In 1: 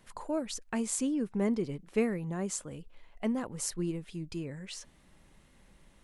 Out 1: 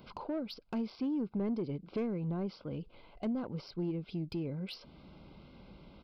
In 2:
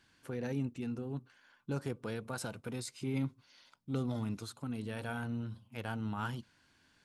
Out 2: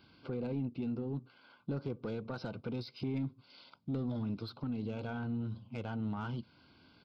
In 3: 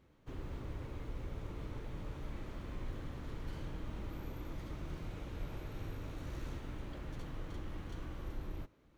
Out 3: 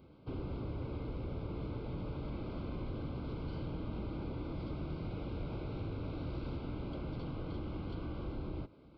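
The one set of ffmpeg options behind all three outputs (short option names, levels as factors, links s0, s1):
-af "highpass=f=110:p=1,acompressor=threshold=0.00355:ratio=2,aresample=11025,aresample=44100,asuperstop=centerf=1800:order=8:qfactor=4,asoftclip=type=tanh:threshold=0.0112,crystalizer=i=2:c=0,tiltshelf=f=970:g=6,volume=2"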